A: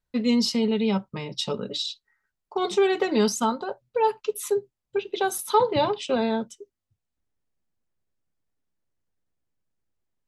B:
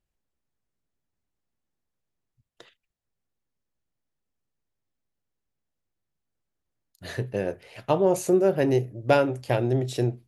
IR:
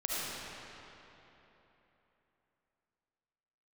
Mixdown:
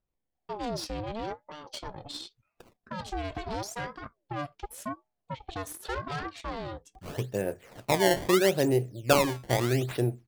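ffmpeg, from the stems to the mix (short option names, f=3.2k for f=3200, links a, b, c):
-filter_complex "[0:a]bandreject=f=60:t=h:w=6,bandreject=f=120:t=h:w=6,aeval=exprs='(tanh(15.8*val(0)+0.7)-tanh(0.7))/15.8':c=same,aeval=exprs='val(0)*sin(2*PI*520*n/s+520*0.45/0.85*sin(2*PI*0.85*n/s))':c=same,adelay=350,volume=-4dB[a];[1:a]acrusher=samples=20:mix=1:aa=0.000001:lfo=1:lforange=32:lforate=0.77,volume=-2.5dB[b];[a][b]amix=inputs=2:normalize=0"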